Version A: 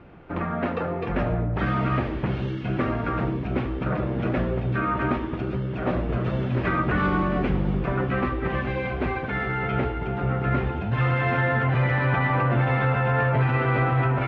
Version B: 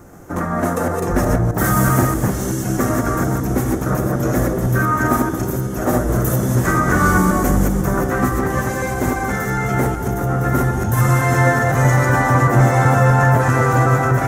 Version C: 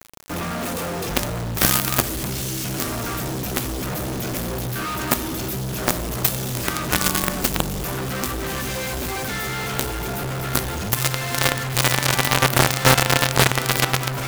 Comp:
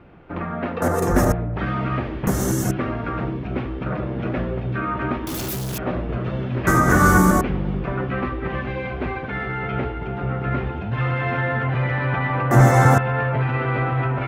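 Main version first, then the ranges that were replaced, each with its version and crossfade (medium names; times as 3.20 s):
A
0.82–1.32 s: from B
2.27–2.71 s: from B
5.27–5.78 s: from C
6.67–7.41 s: from B
12.51–12.98 s: from B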